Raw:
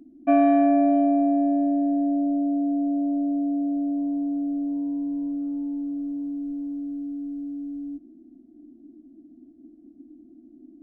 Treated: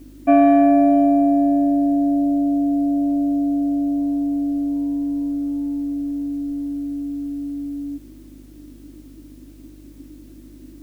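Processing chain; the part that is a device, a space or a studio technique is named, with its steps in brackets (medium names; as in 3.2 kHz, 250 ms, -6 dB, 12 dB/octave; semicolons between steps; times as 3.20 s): video cassette with head-switching buzz (mains buzz 50 Hz, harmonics 12, -51 dBFS -8 dB/octave; white noise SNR 39 dB); trim +5 dB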